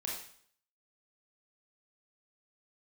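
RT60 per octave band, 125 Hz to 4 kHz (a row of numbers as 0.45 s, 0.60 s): 0.60 s, 0.60 s, 0.60 s, 0.60 s, 0.55 s, 0.55 s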